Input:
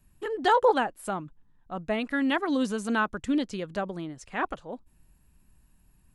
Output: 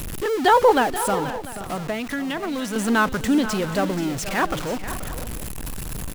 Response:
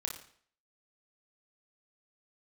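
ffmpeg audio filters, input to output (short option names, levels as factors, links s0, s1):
-filter_complex "[0:a]aeval=exprs='val(0)+0.5*0.0335*sgn(val(0))':c=same,asettb=1/sr,asplit=3[s0][s1][s2];[s0]atrim=end=1.144[s3];[s1]atrim=start=1.14:end=2.76,asetpts=PTS-STARTPTS,afade=t=in:d=0.004:c=qsin,afade=t=out:st=1.616:d=0.004:c=qsin,acrossover=split=80|730[s4][s5][s6];[s4]acompressor=threshold=0.00398:ratio=4[s7];[s5]acompressor=threshold=0.0224:ratio=4[s8];[s6]acompressor=threshold=0.0178:ratio=4[s9];[s7][s8][s9]amix=inputs=3:normalize=0[s10];[s2]atrim=start=2.756[s11];[s3][s10]acrossfade=d=0.004:c1=hsin:c2=qsin[s12];[s12][s11]acrossfade=d=0.004:c1=qsin:c2=hsin,aecho=1:1:481|526|694:0.224|0.15|0.119,volume=1.78"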